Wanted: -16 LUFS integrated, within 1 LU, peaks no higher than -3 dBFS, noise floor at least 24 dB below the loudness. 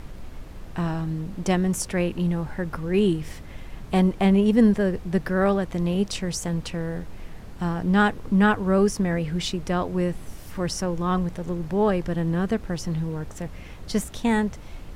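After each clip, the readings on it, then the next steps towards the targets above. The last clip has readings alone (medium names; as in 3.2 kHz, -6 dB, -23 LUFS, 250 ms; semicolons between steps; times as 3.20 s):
noise floor -40 dBFS; noise floor target -49 dBFS; loudness -24.5 LUFS; peak level -6.0 dBFS; loudness target -16.0 LUFS
-> noise print and reduce 9 dB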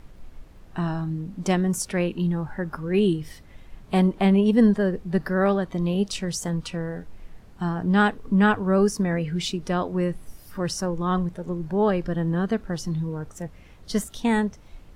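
noise floor -48 dBFS; noise floor target -49 dBFS
-> noise print and reduce 6 dB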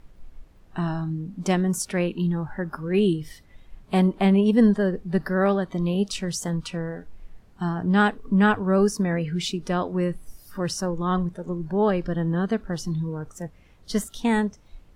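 noise floor -53 dBFS; loudness -24.5 LUFS; peak level -6.5 dBFS; loudness target -16.0 LUFS
-> trim +8.5 dB; peak limiter -3 dBFS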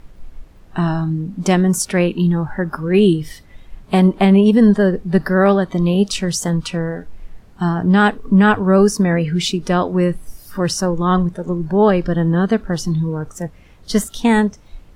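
loudness -16.5 LUFS; peak level -3.0 dBFS; noise floor -44 dBFS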